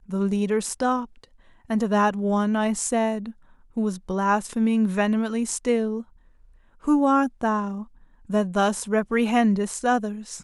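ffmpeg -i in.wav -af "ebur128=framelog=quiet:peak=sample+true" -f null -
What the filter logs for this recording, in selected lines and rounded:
Integrated loudness:
  I:         -23.7 LUFS
  Threshold: -34.4 LUFS
Loudness range:
  LRA:         1.9 LU
  Threshold: -44.5 LUFS
  LRA low:   -25.2 LUFS
  LRA high:  -23.3 LUFS
Sample peak:
  Peak:       -8.1 dBFS
True peak:
  Peak:       -8.0 dBFS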